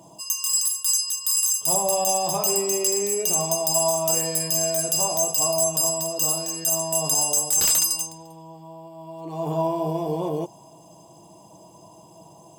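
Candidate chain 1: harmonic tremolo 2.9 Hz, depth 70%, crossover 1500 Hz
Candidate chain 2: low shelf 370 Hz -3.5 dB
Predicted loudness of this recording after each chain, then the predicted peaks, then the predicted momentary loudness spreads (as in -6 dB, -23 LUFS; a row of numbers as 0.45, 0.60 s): -24.5, -21.0 LUFS; -9.5, -10.0 dBFS; 9, 9 LU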